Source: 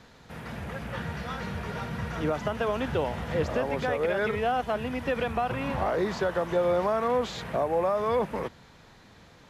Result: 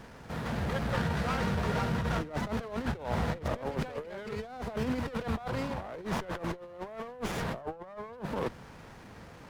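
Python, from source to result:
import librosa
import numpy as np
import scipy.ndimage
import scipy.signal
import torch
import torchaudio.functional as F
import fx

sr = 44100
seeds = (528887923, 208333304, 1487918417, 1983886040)

y = fx.high_shelf_res(x, sr, hz=1600.0, db=-9.0, q=1.5, at=(7.61, 8.13))
y = fx.over_compress(y, sr, threshold_db=-33.0, ratio=-0.5)
y = fx.running_max(y, sr, window=9)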